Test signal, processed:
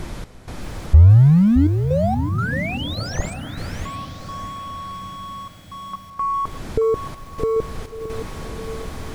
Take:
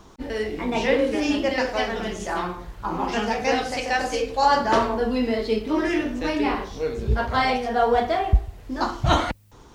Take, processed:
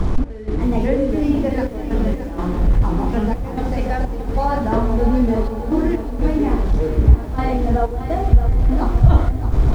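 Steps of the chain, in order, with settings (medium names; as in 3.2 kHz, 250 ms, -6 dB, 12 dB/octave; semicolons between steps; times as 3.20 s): one-bit delta coder 64 kbps, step -25 dBFS; tilt shelf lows +4 dB; band-stop 2.8 kHz, Q 20; in parallel at +1.5 dB: compression 6:1, threshold -27 dBFS; on the sum: trance gate "x.xxxxx.x.xxxx.x" 63 bpm -12 dB; RIAA curve playback; on a send: echo that smears into a reverb 1105 ms, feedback 42%, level -14 dB; on the sum: loudness maximiser -5.5 dB; bit-crushed delay 621 ms, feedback 35%, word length 7-bit, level -10 dB; trim -1 dB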